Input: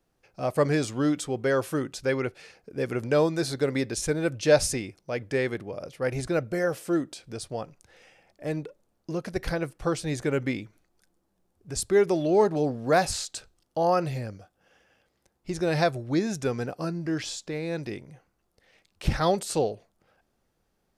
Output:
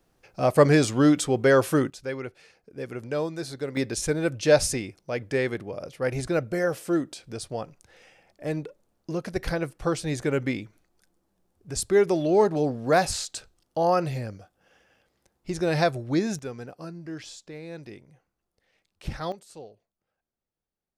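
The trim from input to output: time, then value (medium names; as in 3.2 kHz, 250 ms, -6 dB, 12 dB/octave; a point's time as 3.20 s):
+6 dB
from 1.90 s -6 dB
from 3.77 s +1 dB
from 16.39 s -8 dB
from 19.32 s -18 dB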